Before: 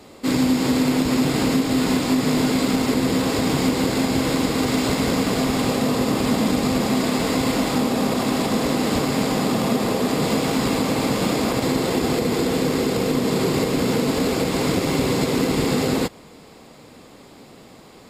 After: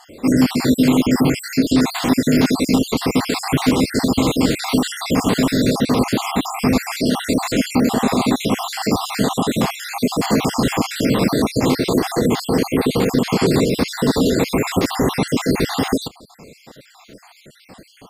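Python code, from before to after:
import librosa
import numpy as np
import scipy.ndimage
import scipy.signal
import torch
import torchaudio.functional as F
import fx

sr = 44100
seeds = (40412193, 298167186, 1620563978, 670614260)

y = fx.spec_dropout(x, sr, seeds[0], share_pct=57)
y = fx.dynamic_eq(y, sr, hz=530.0, q=4.6, threshold_db=-39.0, ratio=4.0, max_db=-3)
y = y * librosa.db_to_amplitude(6.0)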